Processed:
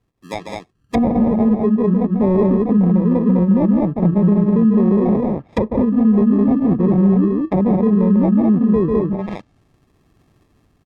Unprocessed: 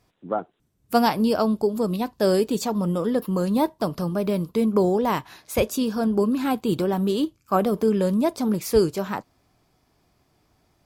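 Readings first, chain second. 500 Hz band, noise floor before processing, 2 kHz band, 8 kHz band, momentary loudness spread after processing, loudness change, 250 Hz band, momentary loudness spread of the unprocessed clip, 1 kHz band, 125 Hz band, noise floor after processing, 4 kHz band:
+3.0 dB, -67 dBFS, n/a, under -15 dB, 9 LU, +8.0 dB, +10.0 dB, 7 LU, -0.5 dB, +11.5 dB, -61 dBFS, under -10 dB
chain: Wiener smoothing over 41 samples; high shelf 4700 Hz +11.5 dB; AGC gain up to 9 dB; on a send: loudspeakers at several distances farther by 50 m -6 dB, 70 m -3 dB; on the sum: sample-and-hold 30×; dynamic EQ 200 Hz, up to +7 dB, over -28 dBFS, Q 2.3; treble ducked by the level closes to 650 Hz, closed at -13 dBFS; maximiser +5 dB; gain -6 dB

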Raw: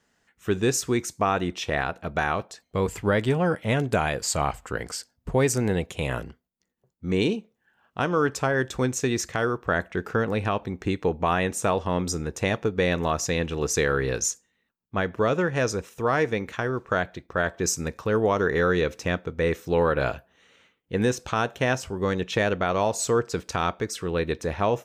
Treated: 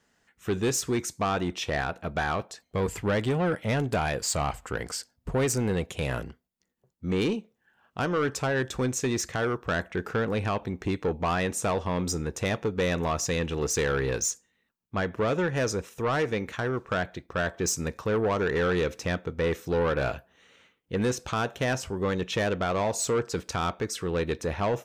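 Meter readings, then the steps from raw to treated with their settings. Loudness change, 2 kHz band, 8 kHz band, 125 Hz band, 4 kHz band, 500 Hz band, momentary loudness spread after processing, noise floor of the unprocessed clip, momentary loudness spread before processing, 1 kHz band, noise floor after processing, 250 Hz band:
-2.5 dB, -3.5 dB, -1.5 dB, -2.0 dB, -1.5 dB, -3.0 dB, 6 LU, -74 dBFS, 7 LU, -3.5 dB, -74 dBFS, -2.5 dB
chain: soft clip -20 dBFS, distortion -13 dB

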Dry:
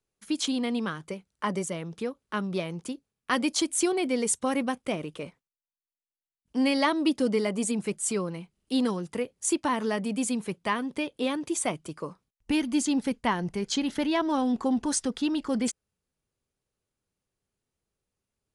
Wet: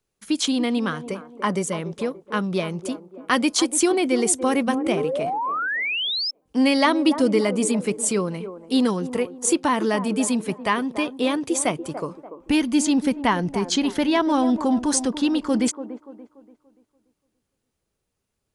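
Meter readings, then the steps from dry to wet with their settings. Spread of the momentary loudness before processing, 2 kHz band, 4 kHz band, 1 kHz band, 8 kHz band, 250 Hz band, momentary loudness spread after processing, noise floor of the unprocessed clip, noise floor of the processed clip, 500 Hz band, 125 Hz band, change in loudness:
10 LU, +7.5 dB, +7.5 dB, +7.0 dB, +6.0 dB, +6.5 dB, 9 LU, under -85 dBFS, -79 dBFS, +7.0 dB, +6.0 dB, +6.0 dB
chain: band-limited delay 0.289 s, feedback 38%, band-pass 560 Hz, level -9.5 dB; painted sound rise, 4.67–6.31, 220–5400 Hz -31 dBFS; gain +6 dB

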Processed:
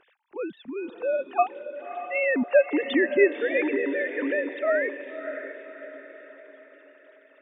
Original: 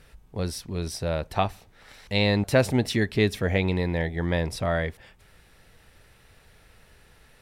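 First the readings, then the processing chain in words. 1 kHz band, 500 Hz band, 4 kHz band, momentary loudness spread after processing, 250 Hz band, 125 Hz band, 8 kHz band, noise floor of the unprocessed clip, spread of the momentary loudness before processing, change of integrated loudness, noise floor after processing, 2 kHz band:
+1.5 dB, +4.0 dB, -10.5 dB, 19 LU, -1.0 dB, under -30 dB, under -40 dB, -57 dBFS, 10 LU, 0.0 dB, -58 dBFS, +3.5 dB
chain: sine-wave speech; diffused feedback echo 0.589 s, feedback 47%, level -10 dB

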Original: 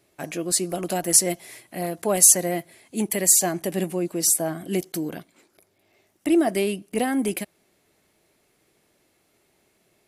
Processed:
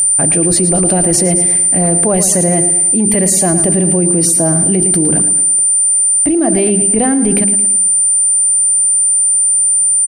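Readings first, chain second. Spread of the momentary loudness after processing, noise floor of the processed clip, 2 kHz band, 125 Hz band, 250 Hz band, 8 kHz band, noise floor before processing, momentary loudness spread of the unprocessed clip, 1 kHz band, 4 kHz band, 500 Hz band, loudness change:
2 LU, -12 dBFS, +6.5 dB, +17.0 dB, +12.5 dB, +15.5 dB, -67 dBFS, 17 LU, +9.0 dB, +3.5 dB, +10.0 dB, +12.5 dB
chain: RIAA curve playback; notches 50/100/150/200/250/300/350/400 Hz; whine 9100 Hz -24 dBFS; in parallel at +3 dB: limiter -16.5 dBFS, peak gain reduction 10.5 dB; on the sum: feedback echo 0.111 s, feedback 46%, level -12 dB; fast leveller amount 100%; gain -4 dB

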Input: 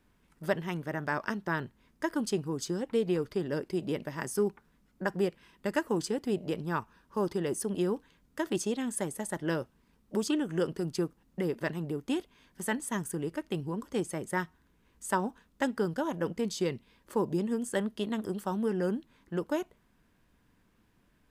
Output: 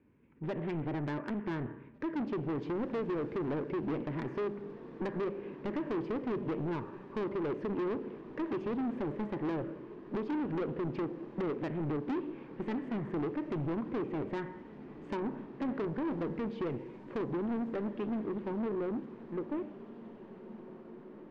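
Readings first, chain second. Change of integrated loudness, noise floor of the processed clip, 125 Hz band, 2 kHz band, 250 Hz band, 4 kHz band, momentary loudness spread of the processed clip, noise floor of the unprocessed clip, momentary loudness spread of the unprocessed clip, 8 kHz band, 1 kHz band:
-3.5 dB, -51 dBFS, -2.5 dB, -9.0 dB, -1.5 dB, -12.5 dB, 9 LU, -69 dBFS, 6 LU, under -30 dB, -4.5 dB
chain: ending faded out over 6.34 s; speaker cabinet 140–2700 Hz, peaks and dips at 180 Hz -10 dB, 700 Hz -9 dB, 1300 Hz -4 dB, 2400 Hz +7 dB; AGC gain up to 7 dB; Schroeder reverb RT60 0.63 s, combs from 27 ms, DRR 13.5 dB; compressor 3:1, threshold -31 dBFS, peak gain reduction 10.5 dB; tilt shelf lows +9.5 dB, about 770 Hz; soft clip -31 dBFS, distortion -7 dB; on a send: diffused feedback echo 1.967 s, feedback 56%, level -14.5 dB; on the sum: Doppler distortion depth 0.22 ms

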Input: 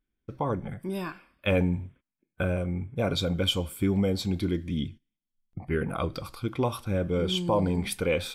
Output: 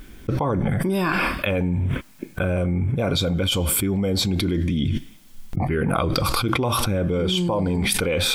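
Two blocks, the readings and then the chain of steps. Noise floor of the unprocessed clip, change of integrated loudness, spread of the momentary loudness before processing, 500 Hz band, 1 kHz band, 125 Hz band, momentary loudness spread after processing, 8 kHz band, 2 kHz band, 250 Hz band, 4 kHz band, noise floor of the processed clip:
under -85 dBFS, +6.5 dB, 9 LU, +4.5 dB, +8.0 dB, +7.5 dB, 6 LU, +14.0 dB, +9.0 dB, +6.0 dB, +8.0 dB, -46 dBFS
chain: fast leveller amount 100%

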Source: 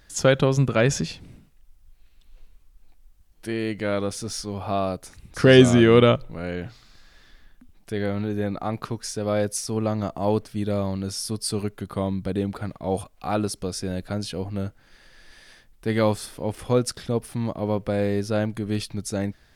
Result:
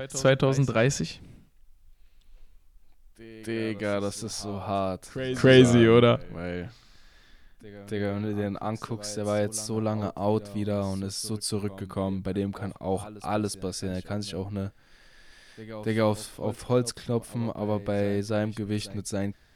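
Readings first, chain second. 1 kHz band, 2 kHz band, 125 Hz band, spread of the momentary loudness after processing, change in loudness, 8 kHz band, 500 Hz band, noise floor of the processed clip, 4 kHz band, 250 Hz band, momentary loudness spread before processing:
-3.0 dB, -3.0 dB, -3.0 dB, 13 LU, -3.0 dB, -3.0 dB, -3.0 dB, -58 dBFS, -3.0 dB, -3.0 dB, 13 LU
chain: reverse echo 0.282 s -15.5 dB; vibrato 0.31 Hz 7.2 cents; gain -3 dB

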